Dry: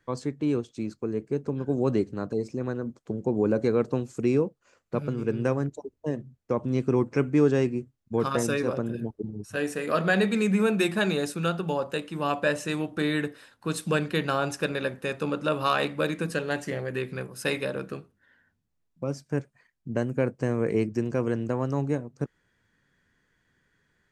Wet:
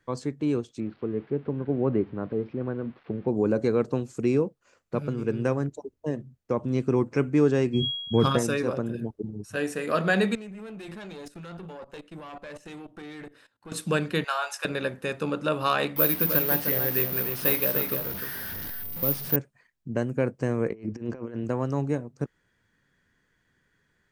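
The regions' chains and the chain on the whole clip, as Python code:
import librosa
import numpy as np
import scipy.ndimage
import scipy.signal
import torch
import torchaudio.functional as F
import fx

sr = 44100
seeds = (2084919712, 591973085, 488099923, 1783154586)

y = fx.chain(x, sr, fx.crossing_spikes(level_db=-29.0),
    fx.gaussian_blur(sigma=3.8), at=(0.8, 3.28))
y = fx.low_shelf(y, sr, hz=230.0, db=10.0, at=(7.73, 8.37), fade=0.02)
y = fx.dmg_tone(y, sr, hz=3300.0, level_db=-36.0, at=(7.73, 8.37), fade=0.02)
y = fx.sustainer(y, sr, db_per_s=59.0, at=(7.73, 8.37), fade=0.02)
y = fx.chain(y, sr, fx.high_shelf(hz=6800.0, db=-6.0),
    fx.level_steps(step_db=18),
    fx.tube_stage(drive_db=34.0, bias=0.6), at=(10.35, 13.72))
y = fx.chain(y, sr, fx.highpass(hz=730.0, slope=24),
    fx.doubler(ms=19.0, db=-6.0), at=(14.24, 14.65))
y = fx.chain(y, sr, fx.delta_mod(bps=32000, step_db=-34.5),
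    fx.resample_bad(factor=3, down='none', up='zero_stuff'),
    fx.echo_single(ms=304, db=-7.0), at=(15.96, 19.36))
y = fx.chain(y, sr, fx.peak_eq(hz=140.0, db=-15.0, octaves=0.24),
    fx.over_compress(threshold_db=-33.0, ratio=-0.5),
    fx.bessel_lowpass(hz=3300.0, order=2), at=(20.68, 21.44))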